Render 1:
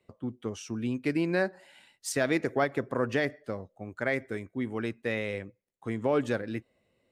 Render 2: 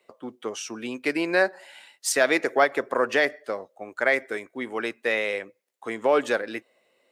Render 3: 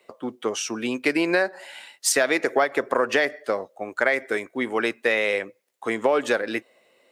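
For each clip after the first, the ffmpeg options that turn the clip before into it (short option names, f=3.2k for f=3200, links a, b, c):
-af "highpass=490,volume=9dB"
-af "acompressor=threshold=-23dB:ratio=5,volume=6dB"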